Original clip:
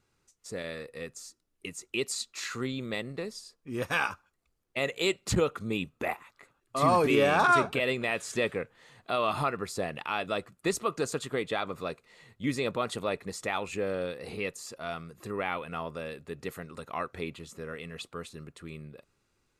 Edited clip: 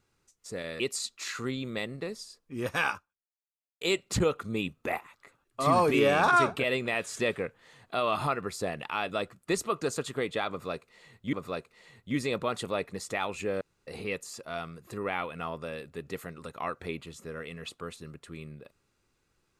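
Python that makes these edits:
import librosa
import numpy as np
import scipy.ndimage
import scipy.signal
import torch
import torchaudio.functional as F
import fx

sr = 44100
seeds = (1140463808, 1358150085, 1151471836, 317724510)

y = fx.edit(x, sr, fx.cut(start_s=0.8, length_s=1.16),
    fx.fade_out_span(start_s=4.08, length_s=0.89, curve='exp'),
    fx.repeat(start_s=11.66, length_s=0.83, count=2),
    fx.room_tone_fill(start_s=13.94, length_s=0.26), tone=tone)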